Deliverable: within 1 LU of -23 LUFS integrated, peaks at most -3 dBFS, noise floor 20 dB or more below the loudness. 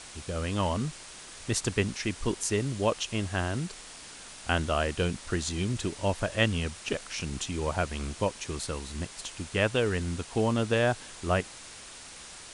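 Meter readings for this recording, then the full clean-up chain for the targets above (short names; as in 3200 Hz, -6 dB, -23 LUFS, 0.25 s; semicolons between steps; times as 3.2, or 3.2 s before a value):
noise floor -46 dBFS; noise floor target -51 dBFS; loudness -30.5 LUFS; peak -11.0 dBFS; loudness target -23.0 LUFS
-> noise print and reduce 6 dB; gain +7.5 dB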